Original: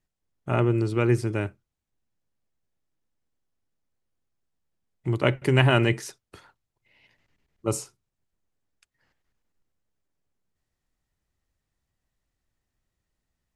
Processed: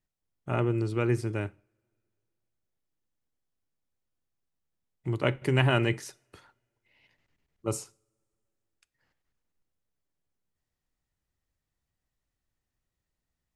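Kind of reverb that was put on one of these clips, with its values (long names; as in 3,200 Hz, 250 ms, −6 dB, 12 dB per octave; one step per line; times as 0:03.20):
coupled-rooms reverb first 0.43 s, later 2.4 s, from −27 dB, DRR 19.5 dB
level −4.5 dB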